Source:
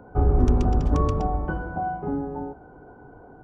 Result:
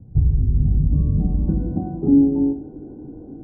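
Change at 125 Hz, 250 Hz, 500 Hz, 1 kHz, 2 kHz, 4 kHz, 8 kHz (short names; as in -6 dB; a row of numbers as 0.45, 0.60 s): +5.5 dB, +10.0 dB, -2.5 dB, -14.5 dB, under -25 dB, under -30 dB, n/a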